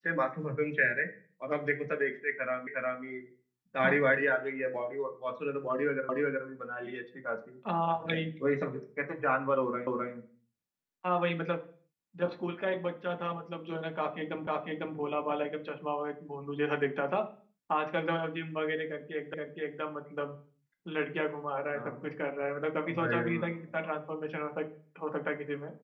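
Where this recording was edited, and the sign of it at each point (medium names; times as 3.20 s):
2.67 s: repeat of the last 0.36 s
6.09 s: repeat of the last 0.37 s
9.87 s: repeat of the last 0.26 s
14.47 s: repeat of the last 0.5 s
19.34 s: repeat of the last 0.47 s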